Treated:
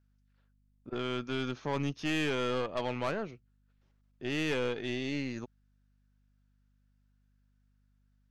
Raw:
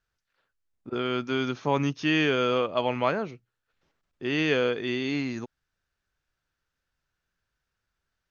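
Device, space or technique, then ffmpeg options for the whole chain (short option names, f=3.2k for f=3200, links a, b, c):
valve amplifier with mains hum: -af "aeval=exprs='(tanh(14.1*val(0)+0.55)-tanh(0.55))/14.1':c=same,aeval=exprs='val(0)+0.000562*(sin(2*PI*50*n/s)+sin(2*PI*2*50*n/s)/2+sin(2*PI*3*50*n/s)/3+sin(2*PI*4*50*n/s)/4+sin(2*PI*5*50*n/s)/5)':c=same,volume=-3.5dB"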